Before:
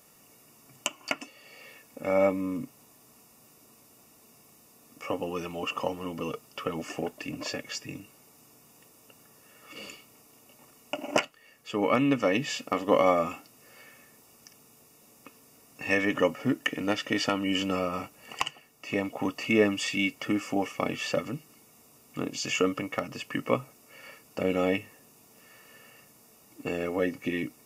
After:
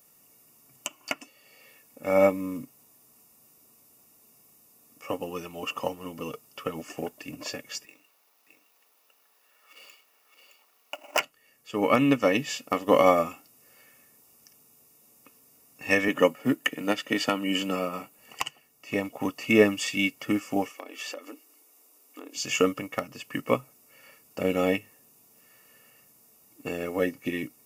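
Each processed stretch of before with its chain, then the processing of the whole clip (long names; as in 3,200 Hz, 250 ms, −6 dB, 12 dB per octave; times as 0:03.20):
0:07.85–0:11.20: running median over 5 samples + high-pass filter 710 Hz + single-tap delay 615 ms −6.5 dB
0:16.08–0:18.19: high-pass filter 130 Hz 24 dB per octave + parametric band 5,600 Hz −6.5 dB 0.22 octaves
0:20.71–0:22.37: downward compressor 12 to 1, threshold −30 dBFS + linear-phase brick-wall high-pass 250 Hz
whole clip: high-shelf EQ 9,600 Hz +11.5 dB; boost into a limiter +9.5 dB; expander for the loud parts 1.5 to 1, over −32 dBFS; level −4.5 dB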